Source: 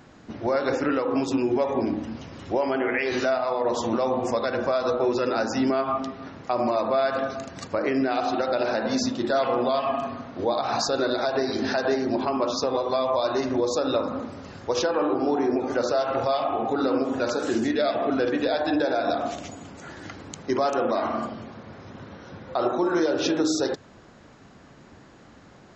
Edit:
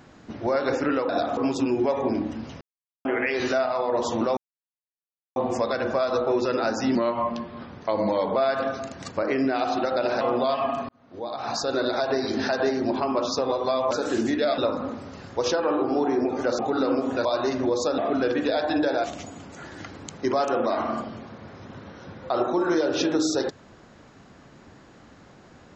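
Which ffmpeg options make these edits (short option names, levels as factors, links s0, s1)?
-filter_complex "[0:a]asplit=16[s0][s1][s2][s3][s4][s5][s6][s7][s8][s9][s10][s11][s12][s13][s14][s15];[s0]atrim=end=1.092[s16];[s1]atrim=start=19.008:end=19.292[s17];[s2]atrim=start=1.088:end=2.33,asetpts=PTS-STARTPTS,afade=t=out:st=1.238:d=0.004:c=hsin[s18];[s3]atrim=start=2.33:end=2.77,asetpts=PTS-STARTPTS,volume=0[s19];[s4]atrim=start=2.77:end=4.09,asetpts=PTS-STARTPTS,afade=t=in:d=0.004:c=hsin,afade=t=out:st=1.316:d=0.004:c=hsin,apad=pad_dur=0.99[s20];[s5]atrim=start=4.09:end=5.684,asetpts=PTS-STARTPTS,afade=t=in:d=0.004:c=hsin[s21];[s6]atrim=start=5.68:end=6.92,asetpts=PTS-STARTPTS,asetrate=38808,aresample=44100[s22];[s7]atrim=start=6.916:end=8.772[s23];[s8]atrim=start=9.458:end=10.14,asetpts=PTS-STARTPTS,afade=t=out:st=0.678:d=0.004:c=hsin[s24];[s9]atrim=start=10.14:end=13.162,asetpts=PTS-STARTPTS,afade=t=in:d=0.97[s25];[s10]atrim=start=17.278:end=17.952[s26];[s11]atrim=start=13.888:end=15.902[s27];[s12]atrim=start=16.618:end=17.282[s28];[s13]atrim=start=13.158:end=13.892[s29];[s14]atrim=start=17.948:end=19.012[s30];[s15]atrim=start=19.288[s31];[s16][s17]acrossfade=d=0.004:c1=hsin:c2=hsin[s32];[s18][s19][s20][s21]concat=n=4:v=0:a=1[s33];[s32][s33]acrossfade=d=0.004:c1=hsin:c2=hsin[s34];[s34][s22]acrossfade=d=0.004:c1=hsin:c2=hsin[s35];[s35][s23]acrossfade=d=0.004:c1=hsin:c2=hsin[s36];[s24][s25]concat=n=2:v=0:a=1[s37];[s36][s37]acrossfade=d=0.004:c1=hsin:c2=hsin[s38];[s38][s26]acrossfade=d=0.004:c1=hsin:c2=hsin[s39];[s39][s27]acrossfade=d=0.004:c1=hsin:c2=hsin[s40];[s40][s28]acrossfade=d=0.004:c1=hsin:c2=hsin[s41];[s41][s29]acrossfade=d=0.004:c1=hsin:c2=hsin[s42];[s42][s30]acrossfade=d=0.004:c1=hsin:c2=hsin[s43];[s43][s31]acrossfade=d=0.004:c1=hsin:c2=hsin"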